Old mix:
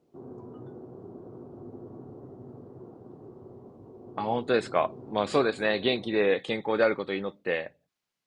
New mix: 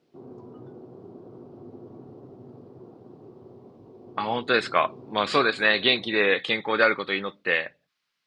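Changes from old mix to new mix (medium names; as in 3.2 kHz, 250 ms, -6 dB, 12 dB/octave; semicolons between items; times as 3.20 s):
speech: add high-order bell 2.4 kHz +9.5 dB 2.6 oct; master: add peaking EQ 65 Hz -12 dB 0.59 oct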